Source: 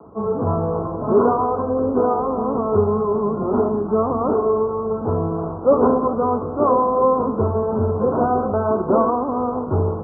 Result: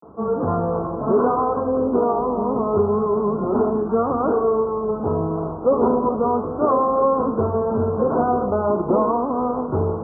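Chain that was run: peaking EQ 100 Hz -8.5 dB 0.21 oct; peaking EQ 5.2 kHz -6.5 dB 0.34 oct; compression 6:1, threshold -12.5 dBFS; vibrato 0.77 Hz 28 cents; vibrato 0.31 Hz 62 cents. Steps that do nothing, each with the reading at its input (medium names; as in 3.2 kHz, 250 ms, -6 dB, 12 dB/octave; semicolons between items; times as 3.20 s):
peaking EQ 5.2 kHz: input has nothing above 1.4 kHz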